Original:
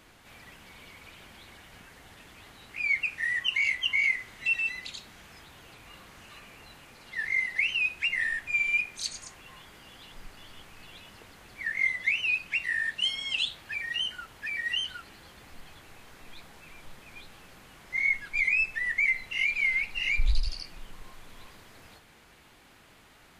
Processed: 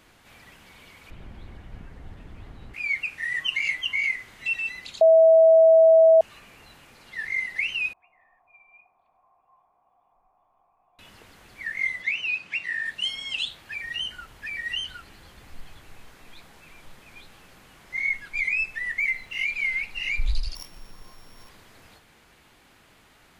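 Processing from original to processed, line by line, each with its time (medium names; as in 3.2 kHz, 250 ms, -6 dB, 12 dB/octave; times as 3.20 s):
1.10–2.74 s: tilt EQ -4 dB/octave
3.31–3.81 s: comb 6.5 ms
5.01–6.21 s: bleep 649 Hz -11 dBFS
7.93–10.99 s: cascade formant filter a
12.02–12.86 s: band-pass 110–7000 Hz
13.83–16.10 s: bass shelf 88 Hz +9.5 dB
18.97–19.43 s: median filter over 3 samples
20.55–21.49 s: sorted samples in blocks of 8 samples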